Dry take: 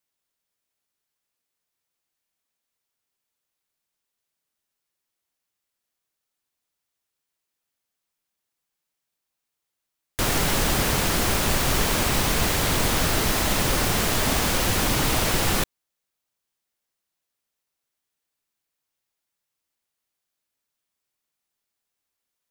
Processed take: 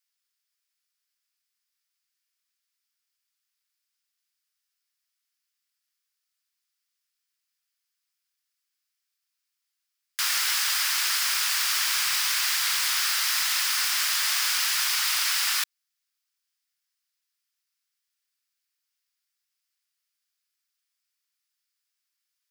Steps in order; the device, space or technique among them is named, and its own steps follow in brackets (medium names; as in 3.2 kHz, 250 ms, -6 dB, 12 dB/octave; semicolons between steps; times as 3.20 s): headphones lying on a table (high-pass 1.3 kHz 24 dB/octave; peaking EQ 5 kHz +6.5 dB 0.32 oct)